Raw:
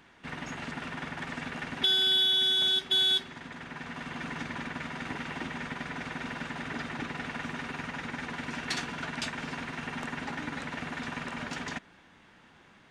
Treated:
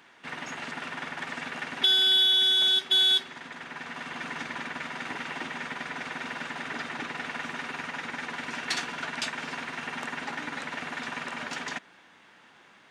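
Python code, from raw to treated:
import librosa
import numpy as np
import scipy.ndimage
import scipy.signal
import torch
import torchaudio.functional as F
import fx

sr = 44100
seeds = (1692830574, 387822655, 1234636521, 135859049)

y = fx.highpass(x, sr, hz=470.0, slope=6)
y = F.gain(torch.from_numpy(y), 3.5).numpy()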